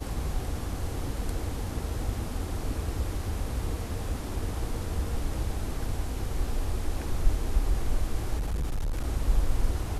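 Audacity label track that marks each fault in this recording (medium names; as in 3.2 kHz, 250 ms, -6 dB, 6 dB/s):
8.380000	9.040000	clipped -25.5 dBFS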